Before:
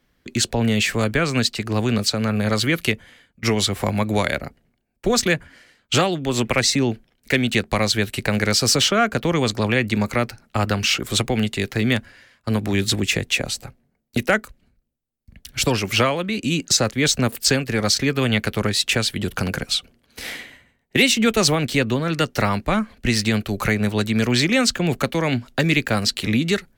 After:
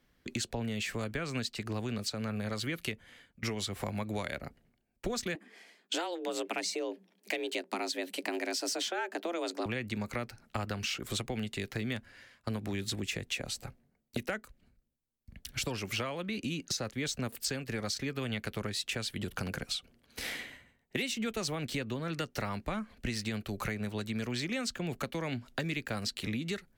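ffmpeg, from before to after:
ffmpeg -i in.wav -filter_complex "[0:a]asettb=1/sr,asplit=3[link_01][link_02][link_03];[link_01]atrim=end=5.354[link_04];[link_02]atrim=start=5.35:end=9.66,asetpts=PTS-STARTPTS,afade=type=in:duration=0.004:curve=qsin,afade=type=out:start_time=4.306:duration=0.004:curve=qsin,afreqshift=170[link_05];[link_03]atrim=start=9.656[link_06];[link_04][link_05]acrossfade=duration=0.004:curve1=hsin:curve2=qsin[link_07];[link_07][link_06]acrossfade=duration=0.004:curve1=qsin:curve2=hsin,asettb=1/sr,asplit=3[link_08][link_09][link_10];[link_08]atrim=end=16.274[link_11];[link_09]atrim=start=16.27:end=16.9,asetpts=PTS-STARTPTS,afade=type=in:duration=0.004:curve=qsin,afade=type=out:start_time=0.626:duration=0.004:curve=qsin,equalizer=frequency=7600:width=7:gain=-9.5[link_12];[link_10]atrim=start=16.896[link_13];[link_11][link_12]acrossfade=duration=0.004:curve1=hsin:curve2=qsin[link_14];[link_14][link_13]acrossfade=duration=0.004:curve1=qsin:curve2=hsin,acompressor=threshold=-29dB:ratio=4,volume=-5dB" out.wav

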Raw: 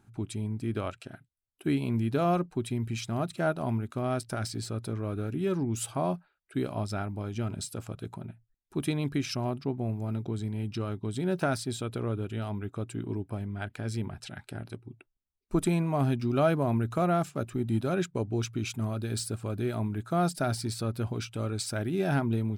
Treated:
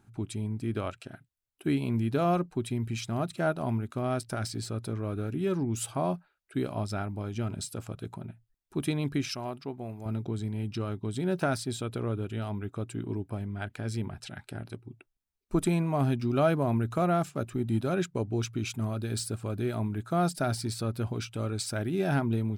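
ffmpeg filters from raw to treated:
ffmpeg -i in.wav -filter_complex "[0:a]asettb=1/sr,asplit=3[link_01][link_02][link_03];[link_01]atrim=end=9.294[link_04];[link_02]atrim=start=9.29:end=10.06,asetpts=PTS-STARTPTS,afade=type=in:duration=0.004:curve=qsin,afade=type=out:start_time=0.766:duration=0.004:curve=qsin,lowshelf=frequency=350:gain=-10.5[link_05];[link_03]atrim=start=10.056[link_06];[link_04][link_05]acrossfade=duration=0.004:curve1=hsin:curve2=qsin[link_07];[link_07][link_06]acrossfade=duration=0.004:curve1=qsin:curve2=hsin" out.wav

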